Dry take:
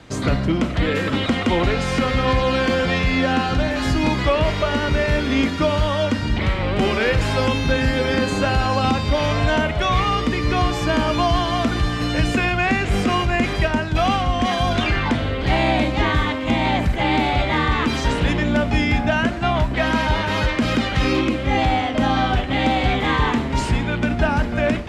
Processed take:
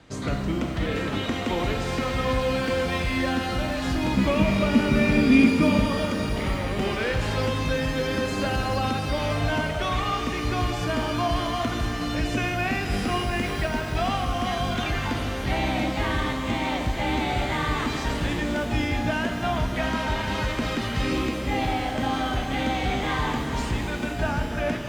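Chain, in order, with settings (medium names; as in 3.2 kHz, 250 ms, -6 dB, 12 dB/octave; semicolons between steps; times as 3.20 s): 4.17–5.86 s: small resonant body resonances 220/2400 Hz, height 18 dB, ringing for 55 ms; pitch-shifted reverb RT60 3 s, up +12 st, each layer -8 dB, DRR 5 dB; trim -8 dB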